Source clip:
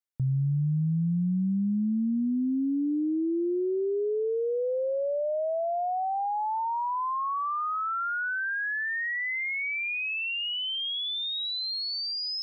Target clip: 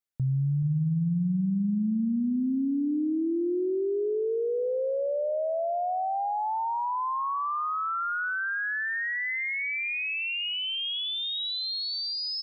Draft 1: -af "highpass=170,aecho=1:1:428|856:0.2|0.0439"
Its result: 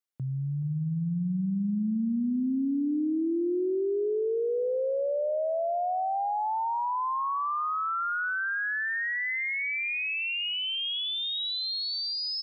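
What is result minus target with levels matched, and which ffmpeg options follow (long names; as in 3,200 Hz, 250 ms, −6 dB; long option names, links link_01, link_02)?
125 Hz band −3.5 dB
-af "aecho=1:1:428|856:0.2|0.0439"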